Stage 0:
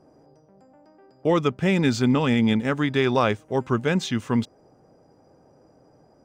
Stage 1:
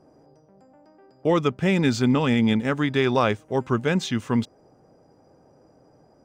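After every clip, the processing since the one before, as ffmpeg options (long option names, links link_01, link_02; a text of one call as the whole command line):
ffmpeg -i in.wav -af anull out.wav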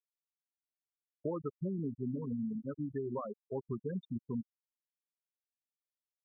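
ffmpeg -i in.wav -af "bandreject=frequency=251.4:width_type=h:width=4,bandreject=frequency=502.8:width_type=h:width=4,bandreject=frequency=754.2:width_type=h:width=4,acompressor=threshold=-32dB:ratio=3,afftfilt=real='re*gte(hypot(re,im),0.112)':imag='im*gte(hypot(re,im),0.112)':win_size=1024:overlap=0.75,volume=-4.5dB" out.wav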